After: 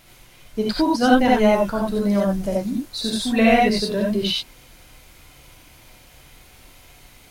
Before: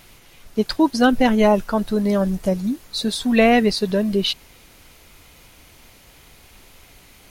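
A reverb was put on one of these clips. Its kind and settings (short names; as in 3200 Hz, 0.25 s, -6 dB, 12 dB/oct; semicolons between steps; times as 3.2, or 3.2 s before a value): non-linear reverb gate 0.11 s rising, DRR -2.5 dB; gain -4.5 dB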